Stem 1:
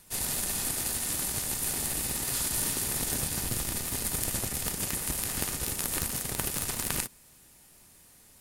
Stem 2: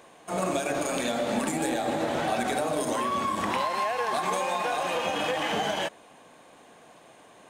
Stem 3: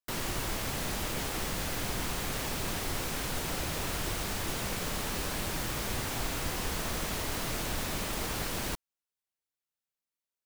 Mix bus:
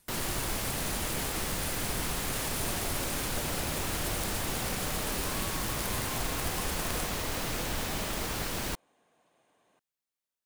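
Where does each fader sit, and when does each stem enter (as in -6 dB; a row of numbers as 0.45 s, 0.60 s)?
-9.0 dB, -17.5 dB, +0.5 dB; 0.00 s, 2.30 s, 0.00 s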